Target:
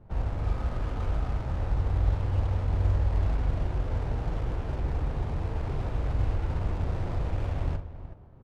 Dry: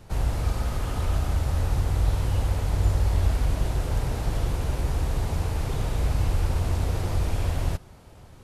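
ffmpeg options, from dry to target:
-af "aecho=1:1:42|372:0.501|0.282,adynamicsmooth=sensitivity=6:basefreq=930,volume=0.596"

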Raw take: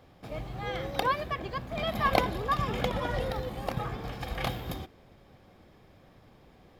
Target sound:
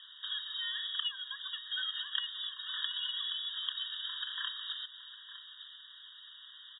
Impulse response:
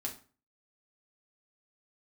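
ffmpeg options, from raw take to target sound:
-filter_complex "[0:a]equalizer=f=1400:t=o:w=2.5:g=11,acompressor=threshold=0.0126:ratio=3,asplit=2[s0][s1];[s1]aecho=0:1:908:0.188[s2];[s0][s2]amix=inputs=2:normalize=0,lowpass=f=3300:t=q:w=0.5098,lowpass=f=3300:t=q:w=0.6013,lowpass=f=3300:t=q:w=0.9,lowpass=f=3300:t=q:w=2.563,afreqshift=-3900,afftfilt=real='re*eq(mod(floor(b*sr/1024/950),2),1)':imag='im*eq(mod(floor(b*sr/1024/950),2),1)':win_size=1024:overlap=0.75,volume=1.19"

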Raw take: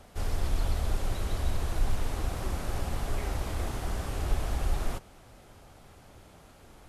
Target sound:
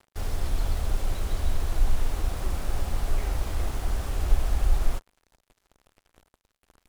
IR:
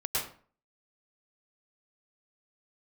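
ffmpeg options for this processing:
-af "acrusher=bits=6:mix=0:aa=0.5,asubboost=boost=2.5:cutoff=71"

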